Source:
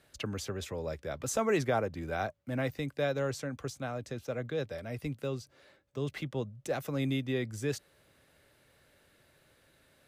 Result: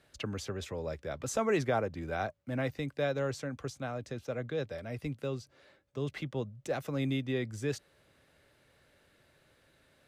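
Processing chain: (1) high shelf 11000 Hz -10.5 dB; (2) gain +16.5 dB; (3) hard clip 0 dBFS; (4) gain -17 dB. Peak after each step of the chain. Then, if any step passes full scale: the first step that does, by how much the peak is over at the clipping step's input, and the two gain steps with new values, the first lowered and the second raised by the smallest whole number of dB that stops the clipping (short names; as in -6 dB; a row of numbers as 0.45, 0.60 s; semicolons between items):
-18.5, -2.0, -2.0, -19.0 dBFS; no overload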